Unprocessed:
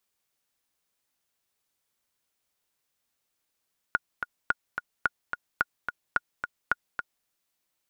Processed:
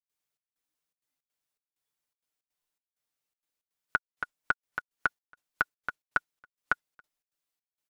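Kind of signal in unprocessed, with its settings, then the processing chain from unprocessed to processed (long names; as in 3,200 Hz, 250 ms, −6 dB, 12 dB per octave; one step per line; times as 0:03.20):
click track 217 BPM, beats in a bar 2, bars 6, 1,440 Hz, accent 7.5 dB −9.5 dBFS
noise reduction from a noise print of the clip's start 9 dB
comb filter 6.7 ms, depth 45%
gate pattern ".xxx..xxxx.xx" 162 BPM −24 dB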